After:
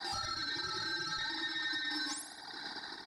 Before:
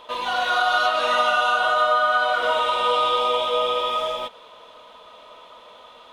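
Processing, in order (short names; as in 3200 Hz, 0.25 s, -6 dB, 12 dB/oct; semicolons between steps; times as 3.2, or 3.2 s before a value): elliptic high-pass 260 Hz; treble ducked by the level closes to 470 Hz, closed at -18.5 dBFS; expander -42 dBFS; low-pass opened by the level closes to 1000 Hz, open at -16.5 dBFS; reverb removal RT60 1.5 s; compressor 3:1, threshold -46 dBFS, peak gain reduction 16 dB; limiter -38.5 dBFS, peak gain reduction 7 dB; sample leveller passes 1; ring modulator 1400 Hz; painted sound rise, 4.14–4.44, 2400–5800 Hz -53 dBFS; on a send: feedback echo 0.111 s, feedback 58%, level -9 dB; on the sum: speed mistake 7.5 ips tape played at 15 ips; gain +9 dB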